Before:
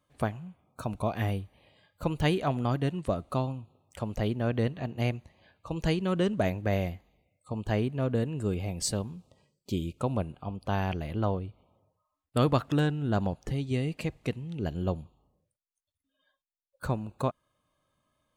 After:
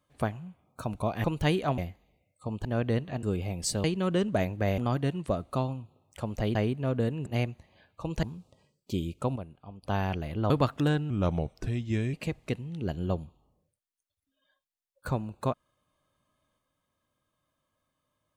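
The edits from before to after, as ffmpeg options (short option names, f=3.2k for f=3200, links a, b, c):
-filter_complex "[0:a]asplit=15[a][b][c][d][e][f][g][h][i][j][k][l][m][n][o];[a]atrim=end=1.242[p];[b]atrim=start=2.028:end=2.572[q];[c]atrim=start=6.828:end=7.702[r];[d]atrim=start=4.338:end=4.922[s];[e]atrim=start=8.408:end=9.022[t];[f]atrim=start=5.888:end=6.832[u];[g]atrim=start=2.568:end=4.342[v];[h]atrim=start=7.698:end=8.412[w];[i]atrim=start=4.918:end=5.892[x];[j]atrim=start=9.018:end=10.152[y];[k]atrim=start=10.148:end=10.622,asetpts=PTS-STARTPTS,volume=-9.5dB[z];[l]atrim=start=10.618:end=11.292[aa];[m]atrim=start=12.418:end=13.024[ab];[n]atrim=start=13.02:end=13.91,asetpts=PTS-STARTPTS,asetrate=37926,aresample=44100,atrim=end_sample=45638,asetpts=PTS-STARTPTS[ac];[o]atrim=start=13.906[ad];[p][q]acrossfade=d=0.004:c1=hsin:c2=hsin[ae];[ae][r]acrossfade=d=0.004:c1=hsin:c2=hsin[af];[af][s]acrossfade=d=0.004:c1=hsin:c2=hsin[ag];[ag][t]acrossfade=d=0.004:c1=hsin:c2=hsin[ah];[ah][u]acrossfade=d=0.004:c1=hsin:c2=hsin[ai];[ai][v]acrossfade=d=0.004:c1=hsin:c2=hsin[aj];[aj][w]acrossfade=d=0.004:c1=hsin:c2=hsin[ak];[ak][x]acrossfade=d=0.004:c1=hsin:c2=hsin[al];[al][y]acrossfade=d=0.004:c1=hsin:c2=hsin[am];[am][z]acrossfade=d=0.004:c1=hsin:c2=hsin[an];[an][aa]acrossfade=d=0.004:c1=hsin:c2=hsin[ao];[ao][ab]acrossfade=d=0.004:c1=hsin:c2=hsin[ap];[ap][ac]acrossfade=d=0.004:c1=hsin:c2=hsin[aq];[aq][ad]acrossfade=d=0.004:c1=hsin:c2=hsin"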